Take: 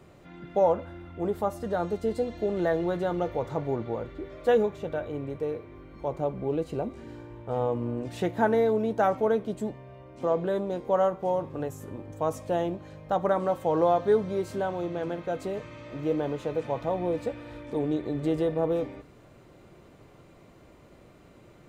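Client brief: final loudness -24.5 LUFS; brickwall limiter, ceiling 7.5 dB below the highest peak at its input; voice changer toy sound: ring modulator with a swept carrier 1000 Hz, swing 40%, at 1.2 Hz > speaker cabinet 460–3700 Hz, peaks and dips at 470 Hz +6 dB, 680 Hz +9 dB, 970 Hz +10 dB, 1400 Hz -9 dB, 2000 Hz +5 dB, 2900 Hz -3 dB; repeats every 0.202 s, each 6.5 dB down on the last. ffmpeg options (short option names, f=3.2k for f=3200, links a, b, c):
-af "alimiter=limit=-20dB:level=0:latency=1,aecho=1:1:202|404|606|808|1010|1212:0.473|0.222|0.105|0.0491|0.0231|0.0109,aeval=exprs='val(0)*sin(2*PI*1000*n/s+1000*0.4/1.2*sin(2*PI*1.2*n/s))':c=same,highpass=460,equalizer=f=470:t=q:w=4:g=6,equalizer=f=680:t=q:w=4:g=9,equalizer=f=970:t=q:w=4:g=10,equalizer=f=1.4k:t=q:w=4:g=-9,equalizer=f=2k:t=q:w=4:g=5,equalizer=f=2.9k:t=q:w=4:g=-3,lowpass=f=3.7k:w=0.5412,lowpass=f=3.7k:w=1.3066,volume=4.5dB"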